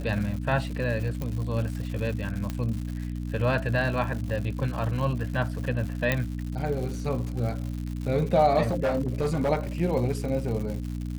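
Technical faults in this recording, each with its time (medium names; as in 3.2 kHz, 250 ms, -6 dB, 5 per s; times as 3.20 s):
crackle 180 per s -34 dBFS
hum 60 Hz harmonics 5 -32 dBFS
1.22 s: pop -19 dBFS
2.50 s: pop -17 dBFS
6.12 s: pop -10 dBFS
8.64–9.50 s: clipped -20.5 dBFS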